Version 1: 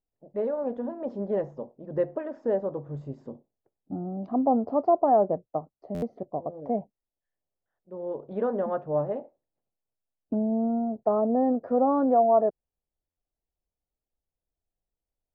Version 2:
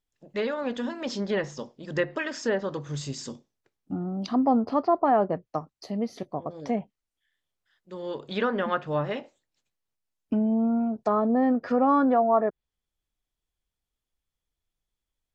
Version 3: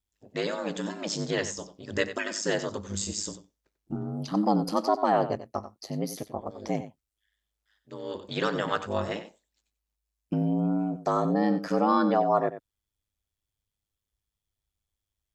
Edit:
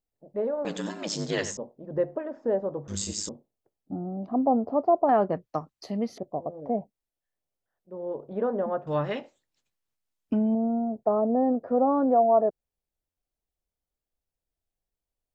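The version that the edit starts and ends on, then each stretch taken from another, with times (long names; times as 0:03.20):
1
0:00.65–0:01.57: punch in from 3
0:02.88–0:03.29: punch in from 3
0:05.09–0:06.18: punch in from 2
0:08.87–0:10.55: punch in from 2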